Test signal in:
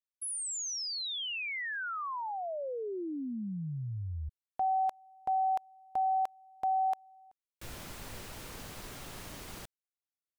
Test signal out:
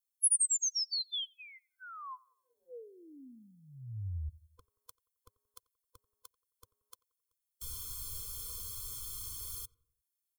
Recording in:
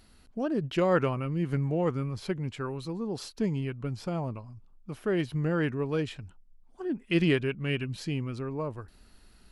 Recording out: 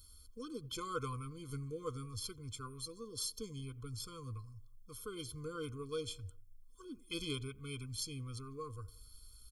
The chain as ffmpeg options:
ffmpeg -i in.wav -filter_complex "[0:a]firequalizer=gain_entry='entry(100,0);entry(170,-26);entry(260,-14);entry(390,-21);entry(560,7);entry(1200,-9);entry(2200,-17);entry(3300,2);entry(10000,13)':delay=0.05:min_phase=1,asplit=2[link_01][link_02];[link_02]adelay=89,lowpass=frequency=1500:poles=1,volume=-21dB,asplit=2[link_03][link_04];[link_04]adelay=89,lowpass=frequency=1500:poles=1,volume=0.52,asplit=2[link_05][link_06];[link_06]adelay=89,lowpass=frequency=1500:poles=1,volume=0.52,asplit=2[link_07][link_08];[link_08]adelay=89,lowpass=frequency=1500:poles=1,volume=0.52[link_09];[link_01][link_03][link_05][link_07][link_09]amix=inputs=5:normalize=0,afftfilt=real='re*eq(mod(floor(b*sr/1024/510),2),0)':imag='im*eq(mod(floor(b*sr/1024/510),2),0)':win_size=1024:overlap=0.75" out.wav

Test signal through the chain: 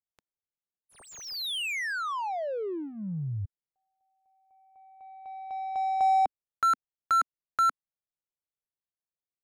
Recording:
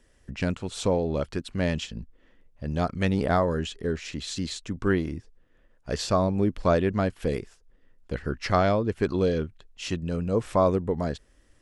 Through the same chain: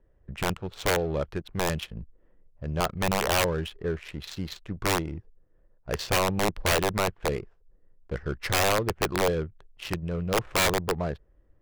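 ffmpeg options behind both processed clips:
ffmpeg -i in.wav -af "adynamicsmooth=sensitivity=7.5:basefreq=860,aeval=exprs='(mod(6.68*val(0)+1,2)-1)/6.68':channel_layout=same,equalizer=frequency=250:width_type=o:width=0.33:gain=-12" out.wav

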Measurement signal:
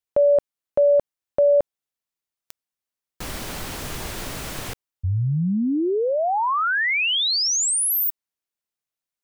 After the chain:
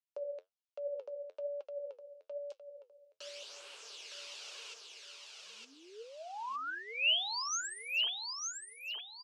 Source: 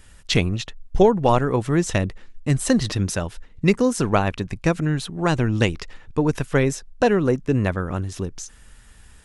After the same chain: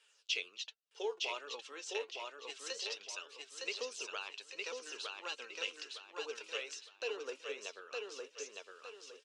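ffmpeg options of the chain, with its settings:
ffmpeg -i in.wav -filter_complex "[0:a]aderivative,asplit=2[link_01][link_02];[link_02]acompressor=threshold=-38dB:ratio=6:attack=7.9:release=105:detection=peak,volume=-1.5dB[link_03];[link_01][link_03]amix=inputs=2:normalize=0,flanger=delay=4.3:depth=7.1:regen=63:speed=1.3:shape=sinusoidal,asoftclip=type=tanh:threshold=-16dB,flanger=delay=0.1:depth=3.7:regen=22:speed=0.27:shape=sinusoidal,highpass=frequency=400:width=0.5412,highpass=frequency=400:width=1.3066,equalizer=frequency=440:width_type=q:width=4:gain=9,equalizer=frequency=740:width_type=q:width=4:gain=-4,equalizer=frequency=1900:width_type=q:width=4:gain=-8,equalizer=frequency=2800:width_type=q:width=4:gain=7,lowpass=frequency=5500:width=0.5412,lowpass=frequency=5500:width=1.3066,aecho=1:1:911|1822|2733|3644:0.708|0.241|0.0818|0.0278,volume=-1dB" out.wav

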